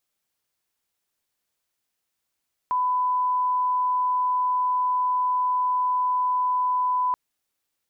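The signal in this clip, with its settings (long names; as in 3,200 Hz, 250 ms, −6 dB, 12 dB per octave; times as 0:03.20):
line-up tone −20 dBFS 4.43 s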